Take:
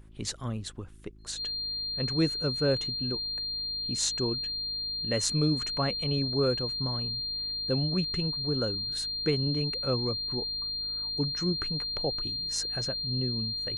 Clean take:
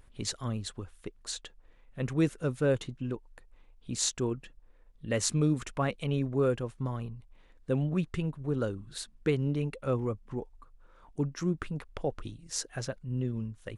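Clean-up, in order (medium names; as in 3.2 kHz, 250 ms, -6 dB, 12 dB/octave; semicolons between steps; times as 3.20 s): de-hum 53.1 Hz, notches 7; band-stop 4.2 kHz, Q 30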